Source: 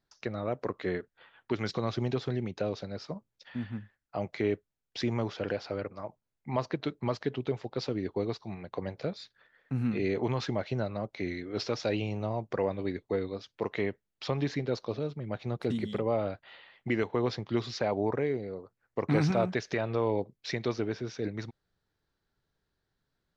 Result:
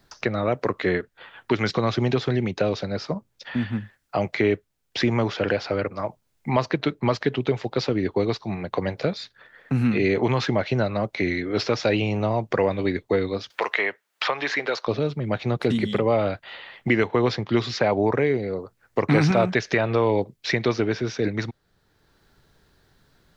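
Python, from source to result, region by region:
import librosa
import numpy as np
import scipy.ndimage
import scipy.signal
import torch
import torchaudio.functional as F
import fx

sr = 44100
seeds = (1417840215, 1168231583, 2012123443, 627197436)

y = fx.chain(x, sr, fx.highpass(hz=660.0, slope=12),
    fx.peak_eq(hz=1400.0, db=3.5, octaves=1.6),
    fx.band_squash(depth_pct=70), at=(13.5, 14.87))
y = fx.dynamic_eq(y, sr, hz=2100.0, q=0.83, threshold_db=-49.0, ratio=4.0, max_db=4)
y = fx.band_squash(y, sr, depth_pct=40)
y = y * librosa.db_to_amplitude(8.5)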